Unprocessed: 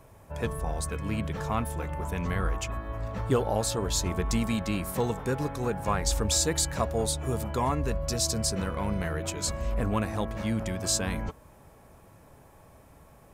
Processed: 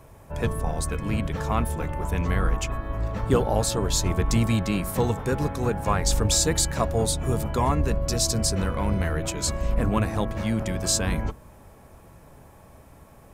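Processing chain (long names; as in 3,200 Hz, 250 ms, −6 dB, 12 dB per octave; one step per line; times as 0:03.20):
sub-octave generator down 1 octave, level −2 dB
level +3.5 dB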